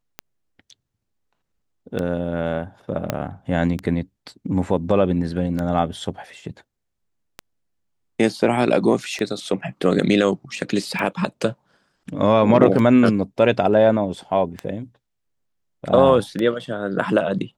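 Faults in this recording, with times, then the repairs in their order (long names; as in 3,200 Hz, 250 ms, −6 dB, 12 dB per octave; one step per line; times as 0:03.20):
scratch tick 33 1/3 rpm −13 dBFS
0:03.10: click −7 dBFS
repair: click removal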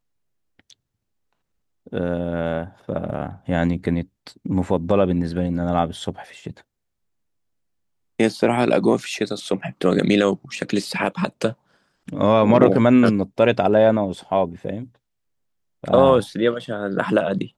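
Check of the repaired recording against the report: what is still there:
0:03.10: click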